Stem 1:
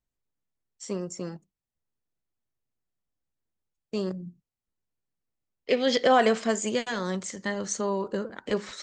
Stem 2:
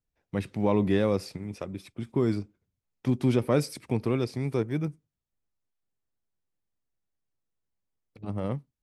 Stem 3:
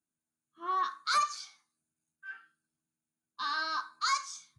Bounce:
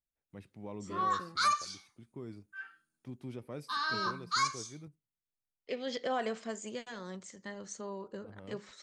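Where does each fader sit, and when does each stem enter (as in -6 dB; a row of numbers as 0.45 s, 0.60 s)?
-13.5 dB, -19.5 dB, -0.5 dB; 0.00 s, 0.00 s, 0.30 s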